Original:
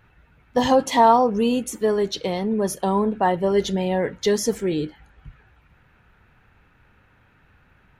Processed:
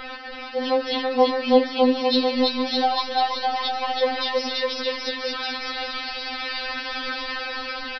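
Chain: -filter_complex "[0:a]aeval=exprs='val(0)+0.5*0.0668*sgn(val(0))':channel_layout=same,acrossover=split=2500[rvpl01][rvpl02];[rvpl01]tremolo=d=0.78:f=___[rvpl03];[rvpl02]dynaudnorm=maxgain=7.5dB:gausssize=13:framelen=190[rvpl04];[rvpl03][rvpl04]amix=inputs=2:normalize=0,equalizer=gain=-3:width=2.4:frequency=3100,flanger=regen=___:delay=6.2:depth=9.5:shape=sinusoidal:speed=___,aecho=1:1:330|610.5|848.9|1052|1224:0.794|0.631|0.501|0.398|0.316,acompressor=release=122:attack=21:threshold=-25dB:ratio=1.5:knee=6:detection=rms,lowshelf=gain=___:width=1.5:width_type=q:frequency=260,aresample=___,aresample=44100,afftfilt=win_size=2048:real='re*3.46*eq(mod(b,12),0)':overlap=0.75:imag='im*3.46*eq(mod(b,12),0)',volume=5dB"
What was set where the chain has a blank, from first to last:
0.72, -35, 1.1, -7.5, 11025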